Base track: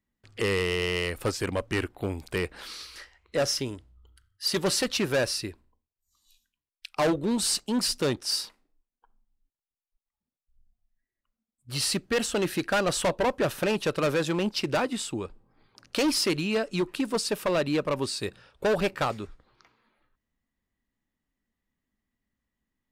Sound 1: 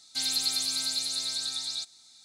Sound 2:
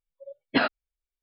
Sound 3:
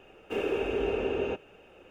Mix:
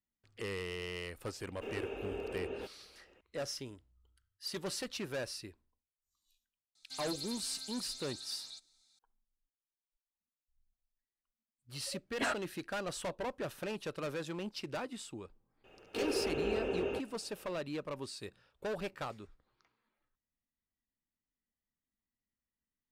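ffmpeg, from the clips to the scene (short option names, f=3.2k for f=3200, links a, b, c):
-filter_complex "[3:a]asplit=2[a][b];[0:a]volume=-13.5dB[c];[2:a]asplit=2[d][e];[e]highpass=f=720:p=1,volume=17dB,asoftclip=type=tanh:threshold=-9dB[f];[d][f]amix=inputs=2:normalize=0,lowpass=f=2k:p=1,volume=-6dB[g];[a]atrim=end=1.9,asetpts=PTS-STARTPTS,volume=-11.5dB,afade=t=in:d=0.004:c=hsin,afade=t=out:st=1.896:d=0.004:c=hsin,adelay=1310[h];[1:a]atrim=end=2.24,asetpts=PTS-STARTPTS,volume=-15.5dB,afade=t=in:d=0.004:c=hsin,afade=t=out:st=2.236:d=0.004:c=hsin,adelay=6750[i];[g]atrim=end=1.22,asetpts=PTS-STARTPTS,volume=-14dB,afade=t=in:d=0.004:c=hsin,afade=t=out:st=1.216:d=0.004:c=hsin,adelay=11660[j];[b]atrim=end=1.9,asetpts=PTS-STARTPTS,volume=-5.5dB,afade=t=in:d=0.004:c=hsin,afade=t=out:st=1.896:d=0.004:c=hsin,adelay=15640[k];[c][h][i][j][k]amix=inputs=5:normalize=0"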